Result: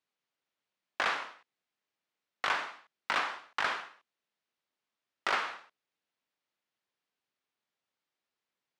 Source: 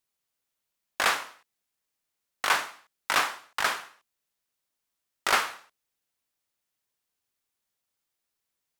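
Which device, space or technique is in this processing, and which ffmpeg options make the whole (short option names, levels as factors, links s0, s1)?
AM radio: -af "highpass=150,lowpass=3800,acompressor=threshold=0.0562:ratio=5,asoftclip=type=tanh:threshold=0.119"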